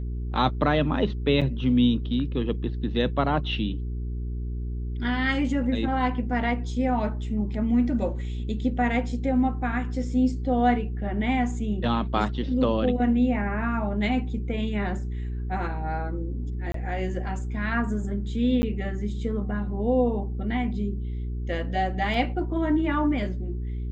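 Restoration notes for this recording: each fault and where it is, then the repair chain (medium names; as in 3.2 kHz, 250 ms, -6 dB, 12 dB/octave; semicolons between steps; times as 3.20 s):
hum 60 Hz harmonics 7 -30 dBFS
1.41–1.42 s: dropout 6 ms
16.72–16.74 s: dropout 23 ms
18.62–18.63 s: dropout 10 ms
22.14 s: dropout 2.5 ms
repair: de-hum 60 Hz, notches 7; interpolate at 1.41 s, 6 ms; interpolate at 16.72 s, 23 ms; interpolate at 18.62 s, 10 ms; interpolate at 22.14 s, 2.5 ms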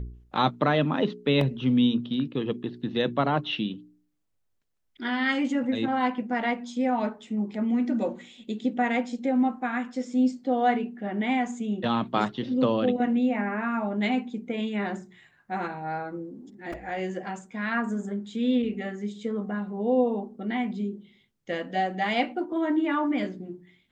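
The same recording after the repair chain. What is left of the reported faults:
nothing left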